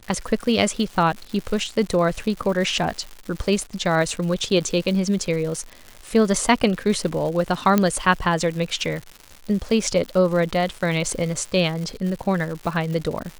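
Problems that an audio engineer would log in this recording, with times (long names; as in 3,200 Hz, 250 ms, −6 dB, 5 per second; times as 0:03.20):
surface crackle 250 per second −30 dBFS
0:07.78: click −5 dBFS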